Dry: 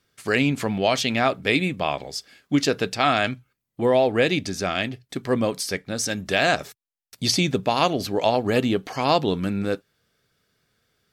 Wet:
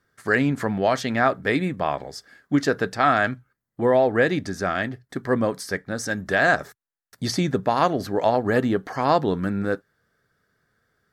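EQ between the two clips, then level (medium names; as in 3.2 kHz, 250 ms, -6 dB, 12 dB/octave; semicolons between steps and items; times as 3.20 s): resonant high shelf 2.1 kHz -6 dB, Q 3; 0.0 dB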